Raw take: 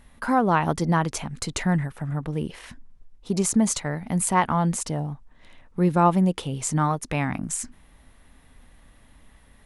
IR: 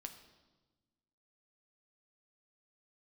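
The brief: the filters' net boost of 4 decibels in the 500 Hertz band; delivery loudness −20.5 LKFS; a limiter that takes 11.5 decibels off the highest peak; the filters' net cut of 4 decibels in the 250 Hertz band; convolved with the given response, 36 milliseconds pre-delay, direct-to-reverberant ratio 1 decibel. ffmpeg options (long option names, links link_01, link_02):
-filter_complex "[0:a]equalizer=frequency=250:width_type=o:gain=-8.5,equalizer=frequency=500:width_type=o:gain=7.5,alimiter=limit=-16dB:level=0:latency=1,asplit=2[link_01][link_02];[1:a]atrim=start_sample=2205,adelay=36[link_03];[link_02][link_03]afir=irnorm=-1:irlink=0,volume=3.5dB[link_04];[link_01][link_04]amix=inputs=2:normalize=0,volume=4.5dB"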